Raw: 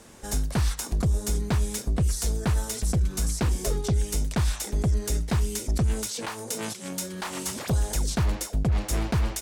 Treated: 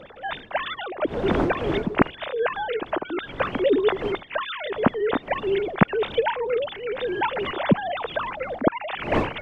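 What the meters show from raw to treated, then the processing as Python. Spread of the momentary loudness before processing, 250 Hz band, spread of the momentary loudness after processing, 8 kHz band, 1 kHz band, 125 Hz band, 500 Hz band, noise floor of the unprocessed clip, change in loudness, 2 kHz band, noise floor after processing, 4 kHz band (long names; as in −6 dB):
6 LU, +5.5 dB, 8 LU, below −30 dB, +11.0 dB, −7.5 dB, +12.5 dB, −40 dBFS, +2.5 dB, +10.5 dB, −43 dBFS, +2.0 dB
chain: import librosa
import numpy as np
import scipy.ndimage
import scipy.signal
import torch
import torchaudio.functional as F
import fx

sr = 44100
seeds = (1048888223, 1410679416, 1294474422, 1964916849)

y = fx.sine_speech(x, sr)
y = fx.dmg_wind(y, sr, seeds[0], corner_hz=510.0, level_db=-35.0)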